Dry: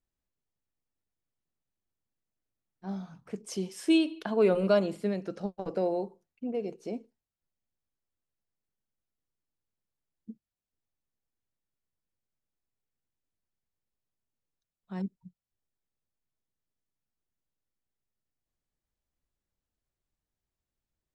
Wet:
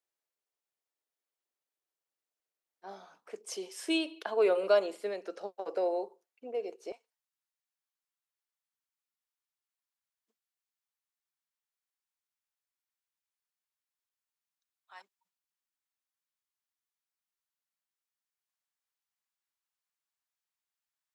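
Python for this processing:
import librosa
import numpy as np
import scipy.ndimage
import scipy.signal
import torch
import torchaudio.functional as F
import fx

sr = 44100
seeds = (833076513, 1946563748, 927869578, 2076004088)

y = fx.highpass(x, sr, hz=fx.steps((0.0, 400.0), (6.92, 890.0)), slope=24)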